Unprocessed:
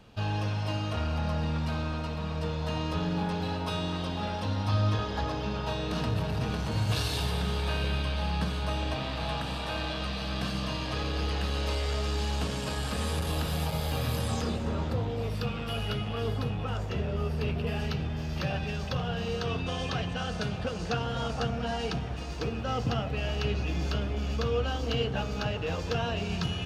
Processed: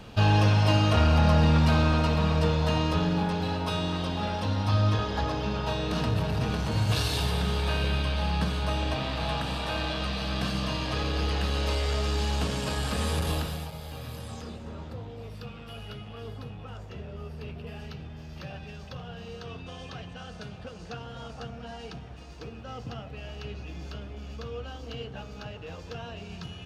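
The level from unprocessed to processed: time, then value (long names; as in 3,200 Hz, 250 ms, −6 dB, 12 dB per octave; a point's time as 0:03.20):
0:02.19 +9.5 dB
0:03.33 +2.5 dB
0:13.32 +2.5 dB
0:13.74 −9 dB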